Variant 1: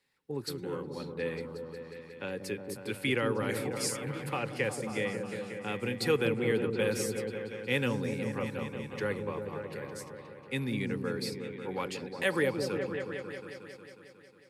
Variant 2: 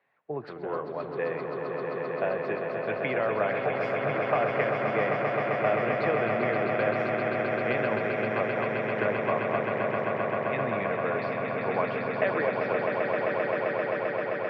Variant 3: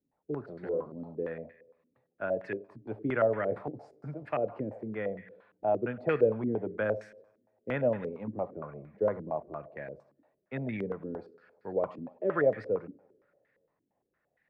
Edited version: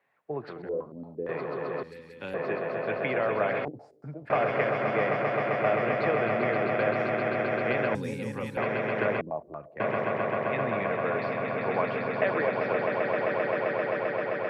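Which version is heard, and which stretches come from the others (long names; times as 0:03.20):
2
0:00.62–0:01.29: punch in from 3
0:01.83–0:02.34: punch in from 1
0:03.65–0:04.30: punch in from 3
0:07.95–0:08.57: punch in from 1
0:09.21–0:09.80: punch in from 3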